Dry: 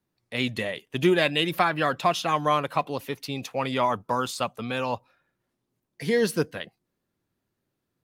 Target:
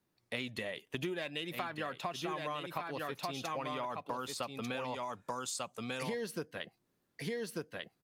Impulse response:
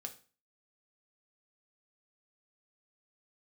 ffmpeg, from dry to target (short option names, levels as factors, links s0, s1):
-filter_complex "[0:a]lowshelf=f=160:g=-5,aecho=1:1:1193:0.501,acontrast=38,asettb=1/sr,asplit=3[s0][s1][s2];[s0]atrim=end=4.944[s3];[s1]atrim=start=4.94:end=6.03,asetpts=PTS-STARTPTS,afade=t=in:d=0.004:c=qsin,afade=t=out:st=1.086:d=0.004:c=qsin,equalizer=f=7400:w=1.2:g=12.5[s4];[s2]atrim=start=6.026[s5];[s3][s4]acrossfade=d=0.004:c1=hsin:c2=qsin[s6];[s6][s5]acrossfade=d=0.004:c1=qsin:c2=hsin,acompressor=threshold=0.0316:ratio=12,volume=0.562"